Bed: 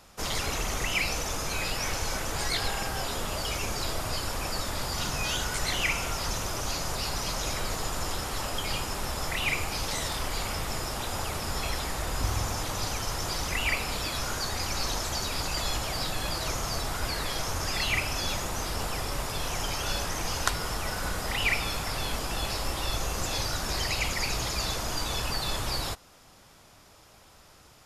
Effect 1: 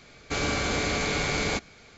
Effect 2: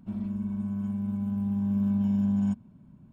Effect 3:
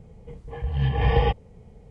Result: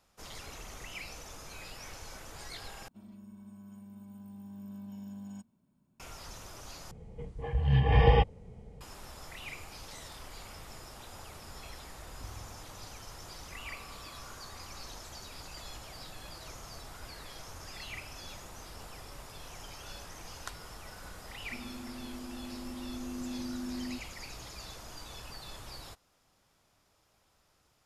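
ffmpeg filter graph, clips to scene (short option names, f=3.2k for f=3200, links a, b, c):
-filter_complex "[2:a]asplit=2[a][b];[0:a]volume=-15.5dB[c];[a]bass=f=250:g=-10,treble=f=4k:g=14[d];[1:a]asuperpass=centerf=1100:order=4:qfactor=4.6[e];[b]afreqshift=-450[f];[c]asplit=3[g][h][i];[g]atrim=end=2.884[j];[d]atrim=end=3.12,asetpts=PTS-STARTPTS,volume=-12dB[k];[h]atrim=start=5.996:end=6.914[l];[3:a]atrim=end=1.9,asetpts=PTS-STARTPTS,volume=-1.5dB[m];[i]atrim=start=8.806[n];[e]atrim=end=1.97,asetpts=PTS-STARTPTS,volume=-14.5dB,afade=t=in:d=0.004:c=hsin,afade=t=out:st=1.966:d=0.004:c=hsin,adelay=13220[o];[f]atrim=end=3.12,asetpts=PTS-STARTPTS,volume=-13.5dB,afade=t=in:d=0.004:c=hsin,afade=t=out:st=3.116:d=0.004:c=hsin,adelay=21440[p];[j][k]acrossfade=d=0.004:c1=hsin:c2=hsin[q];[q][l]acrossfade=d=0.004:c1=hsin:c2=hsin[r];[r][m]acrossfade=d=0.004:c1=hsin:c2=hsin[s];[s][n]acrossfade=d=0.004:c1=hsin:c2=hsin[t];[t][o][p]amix=inputs=3:normalize=0"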